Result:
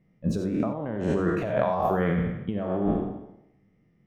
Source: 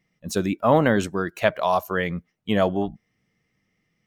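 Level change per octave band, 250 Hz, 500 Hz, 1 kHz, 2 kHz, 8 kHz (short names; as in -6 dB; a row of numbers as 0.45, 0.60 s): -1.5 dB, -4.5 dB, -5.5 dB, -9.5 dB, under -10 dB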